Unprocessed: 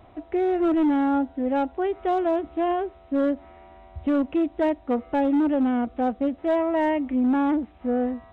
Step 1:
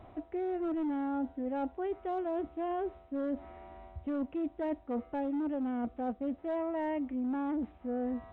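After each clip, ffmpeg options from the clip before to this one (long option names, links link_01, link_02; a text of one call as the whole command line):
ffmpeg -i in.wav -af "highshelf=frequency=2800:gain=-8,areverse,acompressor=threshold=-31dB:ratio=6,areverse,volume=-1.5dB" out.wav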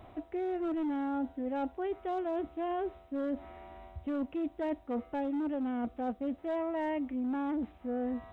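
ffmpeg -i in.wav -af "highshelf=frequency=3000:gain=9" out.wav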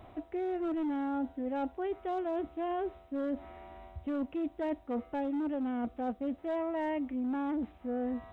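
ffmpeg -i in.wav -af anull out.wav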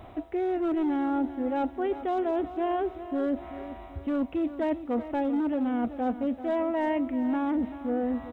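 ffmpeg -i in.wav -af "aecho=1:1:386|772|1158|1544:0.224|0.101|0.0453|0.0204,volume=6dB" out.wav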